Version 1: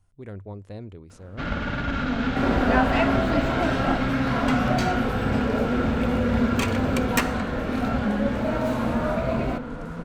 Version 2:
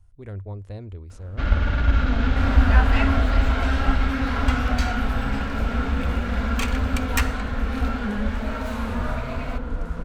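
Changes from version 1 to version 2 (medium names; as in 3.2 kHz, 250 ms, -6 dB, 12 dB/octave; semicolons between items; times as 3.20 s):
second sound: add high-pass 1 kHz 12 dB/octave; master: add resonant low shelf 100 Hz +12 dB, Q 1.5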